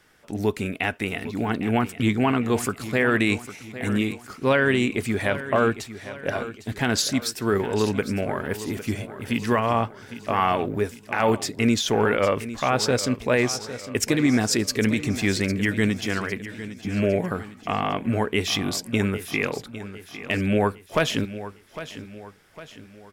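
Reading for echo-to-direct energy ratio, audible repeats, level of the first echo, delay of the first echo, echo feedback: -12.5 dB, 4, -13.5 dB, 0.805 s, 46%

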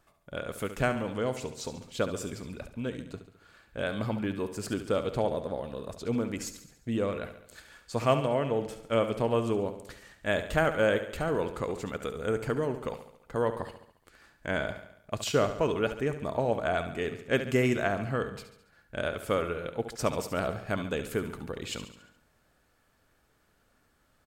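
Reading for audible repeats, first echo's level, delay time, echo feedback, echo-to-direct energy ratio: 5, -11.0 dB, 70 ms, 55%, -9.5 dB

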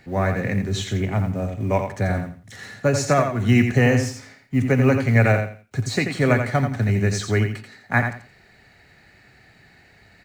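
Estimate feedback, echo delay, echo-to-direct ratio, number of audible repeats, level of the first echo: 23%, 86 ms, -7.0 dB, 3, -7.0 dB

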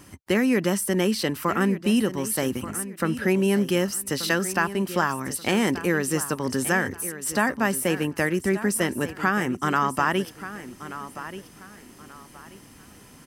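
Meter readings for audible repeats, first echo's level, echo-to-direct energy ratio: 3, -13.5 dB, -13.0 dB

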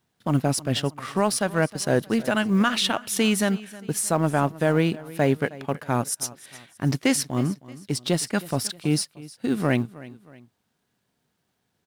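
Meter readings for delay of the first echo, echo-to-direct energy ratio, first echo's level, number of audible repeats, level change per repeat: 0.314 s, -18.5 dB, -19.0 dB, 2, -7.5 dB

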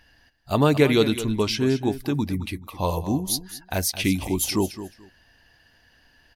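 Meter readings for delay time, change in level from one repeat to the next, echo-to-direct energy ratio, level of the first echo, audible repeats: 0.216 s, -15.0 dB, -13.0 dB, -13.0 dB, 2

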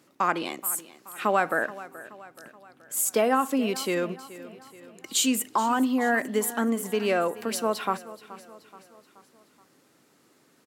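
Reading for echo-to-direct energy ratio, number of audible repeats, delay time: -15.5 dB, 4, 0.427 s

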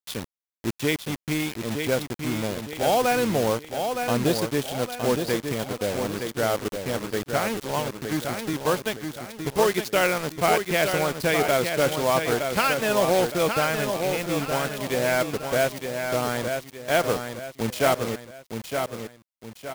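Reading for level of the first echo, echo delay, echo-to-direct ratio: -6.0 dB, 0.915 s, -5.5 dB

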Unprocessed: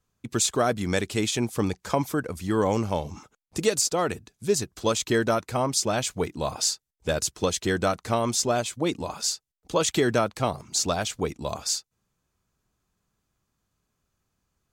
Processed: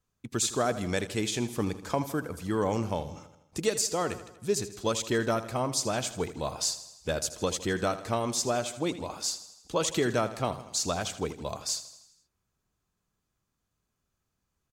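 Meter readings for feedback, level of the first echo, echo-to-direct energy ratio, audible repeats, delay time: 57%, -14.0 dB, -12.5 dB, 5, 80 ms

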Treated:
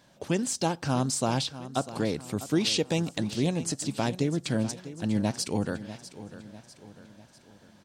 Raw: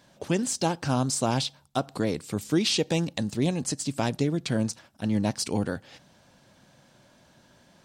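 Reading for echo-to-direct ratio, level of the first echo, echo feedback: -13.5 dB, -14.5 dB, 48%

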